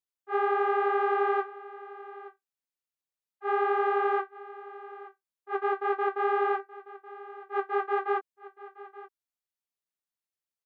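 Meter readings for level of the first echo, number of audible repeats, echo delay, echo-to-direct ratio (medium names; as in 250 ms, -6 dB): -17.5 dB, 1, 875 ms, -17.5 dB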